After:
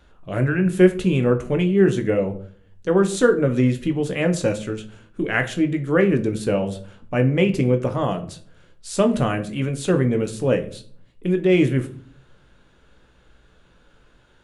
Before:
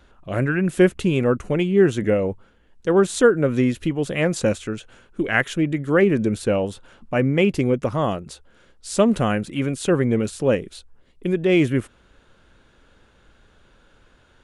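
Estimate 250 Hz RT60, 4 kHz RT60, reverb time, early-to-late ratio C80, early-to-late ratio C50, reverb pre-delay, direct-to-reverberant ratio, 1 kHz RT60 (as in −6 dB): 0.75 s, 0.35 s, 0.50 s, 18.5 dB, 14.5 dB, 7 ms, 6.0 dB, 0.45 s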